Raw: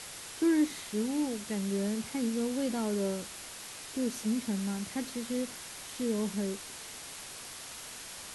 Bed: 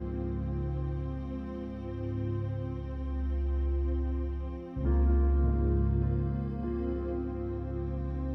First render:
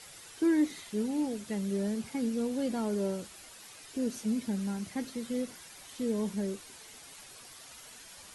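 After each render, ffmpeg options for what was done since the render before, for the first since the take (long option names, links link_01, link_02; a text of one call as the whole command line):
ffmpeg -i in.wav -af "afftdn=noise_reduction=9:noise_floor=-45" out.wav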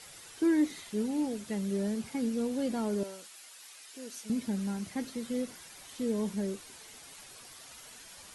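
ffmpeg -i in.wav -filter_complex "[0:a]asettb=1/sr,asplit=3[link_01][link_02][link_03];[link_01]atrim=end=3.034[link_04];[link_02]atrim=start=3.03:end=4.3,asetpts=PTS-STARTPTS,afade=type=in:duration=0.004:curve=qsin,afade=type=out:start_time=1.266:duration=0.004:curve=qsin,highpass=frequency=1400:poles=1[link_05];[link_03]atrim=start=4.296[link_06];[link_04][link_05]acrossfade=duration=0.004:curve1=hsin:curve2=qsin[link_07];[link_07][link_06]acrossfade=duration=0.004:curve1=qsin:curve2=hsin" out.wav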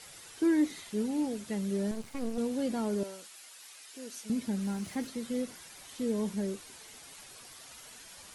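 ffmpeg -i in.wav -filter_complex "[0:a]asettb=1/sr,asplit=3[link_01][link_02][link_03];[link_01]atrim=end=1.914[link_04];[link_02]atrim=start=1.91:end=2.38,asetpts=PTS-STARTPTS,afade=type=in:duration=0.004:curve=qsin,afade=type=out:start_time=0.466:duration=0.004:curve=qsin,aeval=exprs='max(val(0),0)':channel_layout=same[link_05];[link_03]atrim=start=2.376[link_06];[link_04][link_05]acrossfade=duration=0.004:curve1=hsin:curve2=qsin[link_07];[link_07][link_06]acrossfade=duration=0.004:curve1=qsin:curve2=hsin,asettb=1/sr,asplit=3[link_08][link_09][link_10];[link_08]atrim=end=4.624[link_11];[link_09]atrim=start=4.62:end=5.07,asetpts=PTS-STARTPTS,afade=type=in:duration=0.004:curve=qsin,afade=type=out:start_time=0.446:duration=0.004:curve=qsin,aeval=exprs='val(0)+0.5*0.00282*sgn(val(0))':channel_layout=same[link_12];[link_10]atrim=start=5.066[link_13];[link_11][link_12]acrossfade=duration=0.004:curve1=hsin:curve2=qsin[link_14];[link_14][link_13]acrossfade=duration=0.004:curve1=qsin:curve2=hsin" out.wav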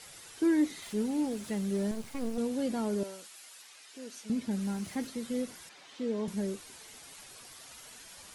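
ffmpeg -i in.wav -filter_complex "[0:a]asettb=1/sr,asplit=3[link_01][link_02][link_03];[link_01]atrim=end=0.824[link_04];[link_02]atrim=start=0.82:end=2.37,asetpts=PTS-STARTPTS,afade=type=in:duration=0.004:curve=qsin,afade=type=out:start_time=1.546:duration=0.004:curve=qsin,aeval=exprs='val(0)+0.5*0.00355*sgn(val(0))':channel_layout=same[link_05];[link_03]atrim=start=2.366[link_06];[link_04][link_05]acrossfade=duration=0.004:curve1=hsin:curve2=qsin[link_07];[link_07][link_06]acrossfade=duration=0.004:curve1=qsin:curve2=hsin,asettb=1/sr,asplit=3[link_08][link_09][link_10];[link_08]atrim=end=3.624[link_11];[link_09]atrim=start=3.62:end=4.51,asetpts=PTS-STARTPTS,afade=type=in:duration=0.004:curve=qsin,afade=type=out:start_time=0.886:duration=0.004:curve=qsin,highshelf=frequency=9500:gain=-10.5[link_12];[link_10]atrim=start=4.506[link_13];[link_11][link_12]acrossfade=duration=0.004:curve1=hsin:curve2=qsin[link_14];[link_14][link_13]acrossfade=duration=0.004:curve1=qsin:curve2=hsin,asettb=1/sr,asplit=3[link_15][link_16][link_17];[link_15]atrim=end=5.694[link_18];[link_16]atrim=start=5.69:end=6.28,asetpts=PTS-STARTPTS,afade=type=in:duration=0.004:curve=qsin,afade=type=out:start_time=0.586:duration=0.004:curve=qsin,highpass=220,lowpass=4600[link_19];[link_17]atrim=start=6.276[link_20];[link_18][link_19]acrossfade=duration=0.004:curve1=hsin:curve2=qsin[link_21];[link_21][link_20]acrossfade=duration=0.004:curve1=qsin:curve2=hsin" out.wav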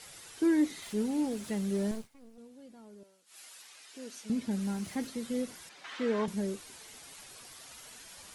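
ffmpeg -i in.wav -filter_complex "[0:a]asettb=1/sr,asplit=3[link_01][link_02][link_03];[link_01]atrim=end=5.844[link_04];[link_02]atrim=start=5.84:end=6.26,asetpts=PTS-STARTPTS,afade=type=in:duration=0.004:curve=qsin,afade=type=out:start_time=0.416:duration=0.004:curve=qsin,equalizer=frequency=1500:width_type=o:width=1.9:gain=15[link_05];[link_03]atrim=start=6.256[link_06];[link_04][link_05]acrossfade=duration=0.004:curve1=hsin:curve2=qsin[link_07];[link_07][link_06]acrossfade=duration=0.004:curve1=qsin:curve2=hsin,asplit=3[link_08][link_09][link_10];[link_08]atrim=end=2.08,asetpts=PTS-STARTPTS,afade=type=out:start_time=1.95:duration=0.13:silence=0.0944061[link_11];[link_09]atrim=start=2.08:end=3.26,asetpts=PTS-STARTPTS,volume=-20.5dB[link_12];[link_10]atrim=start=3.26,asetpts=PTS-STARTPTS,afade=type=in:duration=0.13:silence=0.0944061[link_13];[link_11][link_12][link_13]concat=n=3:v=0:a=1" out.wav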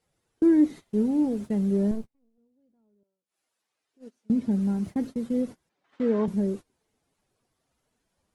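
ffmpeg -i in.wav -af "agate=range=-23dB:threshold=-41dB:ratio=16:detection=peak,tiltshelf=frequency=970:gain=9" out.wav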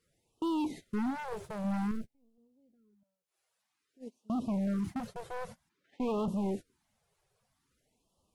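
ffmpeg -i in.wav -af "asoftclip=type=hard:threshold=-30dB,afftfilt=real='re*(1-between(b*sr/1024,240*pow(1900/240,0.5+0.5*sin(2*PI*0.52*pts/sr))/1.41,240*pow(1900/240,0.5+0.5*sin(2*PI*0.52*pts/sr))*1.41))':imag='im*(1-between(b*sr/1024,240*pow(1900/240,0.5+0.5*sin(2*PI*0.52*pts/sr))/1.41,240*pow(1900/240,0.5+0.5*sin(2*PI*0.52*pts/sr))*1.41))':win_size=1024:overlap=0.75" out.wav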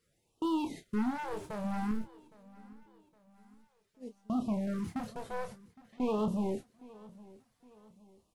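ffmpeg -i in.wav -filter_complex "[0:a]asplit=2[link_01][link_02];[link_02]adelay=28,volume=-9dB[link_03];[link_01][link_03]amix=inputs=2:normalize=0,aecho=1:1:814|1628|2442:0.0891|0.0401|0.018" out.wav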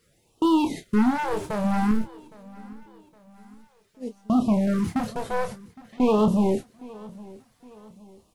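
ffmpeg -i in.wav -af "volume=11.5dB" out.wav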